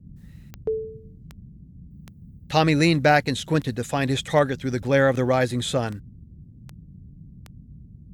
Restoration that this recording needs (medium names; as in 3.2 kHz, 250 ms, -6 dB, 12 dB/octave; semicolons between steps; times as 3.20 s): de-click; noise print and reduce 21 dB